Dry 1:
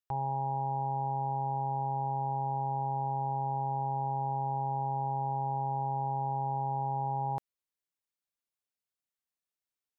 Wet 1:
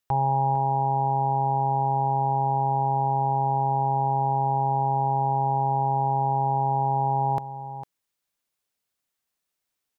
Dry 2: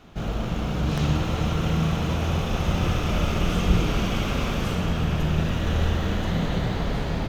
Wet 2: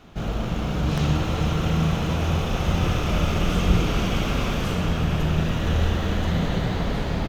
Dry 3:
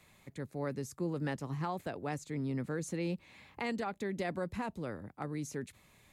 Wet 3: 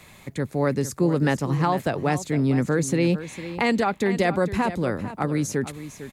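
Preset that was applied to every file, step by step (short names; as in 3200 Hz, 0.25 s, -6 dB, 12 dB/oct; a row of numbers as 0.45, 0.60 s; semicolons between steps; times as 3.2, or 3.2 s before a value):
echo 0.453 s -13 dB; match loudness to -24 LUFS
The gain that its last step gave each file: +10.0, +1.0, +14.5 dB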